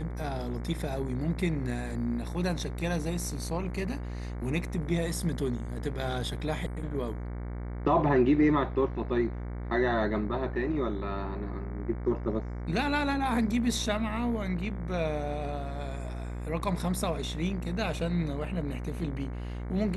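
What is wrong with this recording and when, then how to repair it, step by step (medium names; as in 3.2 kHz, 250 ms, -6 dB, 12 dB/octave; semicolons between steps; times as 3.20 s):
buzz 60 Hz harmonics 38 -36 dBFS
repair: de-hum 60 Hz, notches 38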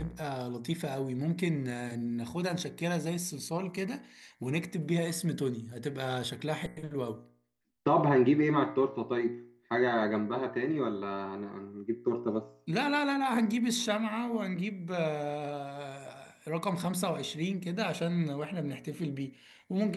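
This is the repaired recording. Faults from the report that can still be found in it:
nothing left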